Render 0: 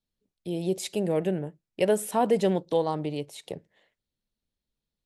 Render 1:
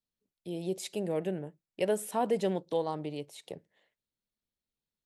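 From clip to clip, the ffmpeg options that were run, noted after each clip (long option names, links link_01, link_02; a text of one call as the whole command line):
ffmpeg -i in.wav -af "lowshelf=frequency=95:gain=-7.5,volume=-5.5dB" out.wav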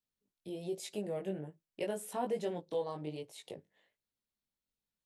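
ffmpeg -i in.wav -filter_complex "[0:a]asplit=2[link_01][link_02];[link_02]acompressor=threshold=-39dB:ratio=6,volume=1dB[link_03];[link_01][link_03]amix=inputs=2:normalize=0,flanger=delay=18:depth=2.9:speed=1.2,volume=-5.5dB" out.wav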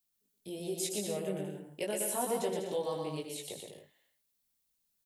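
ffmpeg -i in.wav -filter_complex "[0:a]crystalizer=i=2.5:c=0,asplit=2[link_01][link_02];[link_02]aecho=0:1:120|198|248.7|281.7|303.1:0.631|0.398|0.251|0.158|0.1[link_03];[link_01][link_03]amix=inputs=2:normalize=0" out.wav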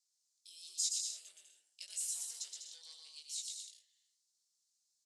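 ffmpeg -i in.wav -af "aeval=exprs='0.0891*(cos(1*acos(clip(val(0)/0.0891,-1,1)))-cos(1*PI/2))+0.0141*(cos(5*acos(clip(val(0)/0.0891,-1,1)))-cos(5*PI/2))':channel_layout=same,asuperpass=centerf=5900:order=4:qfactor=1.8,volume=3dB" out.wav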